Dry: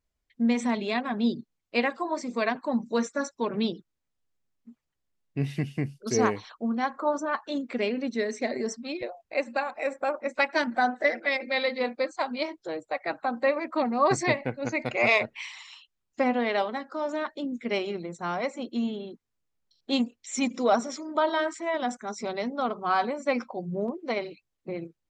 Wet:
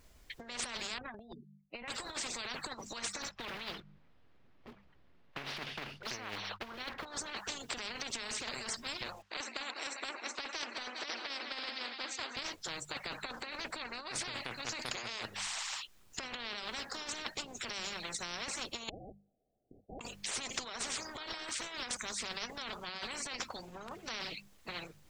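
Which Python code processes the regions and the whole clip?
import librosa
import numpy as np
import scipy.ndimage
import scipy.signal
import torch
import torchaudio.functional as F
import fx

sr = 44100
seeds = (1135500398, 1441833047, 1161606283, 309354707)

y = fx.chain(x, sr, fx.spec_expand(power=2.3),
    fx.highpass(hz=72.0, slope=12),
    fx.air_absorb(metres=140.0), at=(0.98, 1.88))
y = fx.chain(y, sr, fx.block_float(bits=5),
    fx.air_absorb(metres=330.0), at=(3.22, 7.06))
y = fx.chain(y, sr, fx.highpass(hz=940.0, slope=12),
    fx.air_absorb(metres=130.0),
    fx.echo_feedback(ms=200, feedback_pct=51, wet_db=-20.0), at=(9.22, 12.37))
y = fx.chain(y, sr, fx.brickwall_highpass(low_hz=2700.0),
    fx.freq_invert(carrier_hz=3500), at=(18.89, 20.01))
y = fx.hum_notches(y, sr, base_hz=50, count=4)
y = fx.over_compress(y, sr, threshold_db=-33.0, ratio=-1.0)
y = fx.spectral_comp(y, sr, ratio=10.0)
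y = y * 10.0 ** (-1.0 / 20.0)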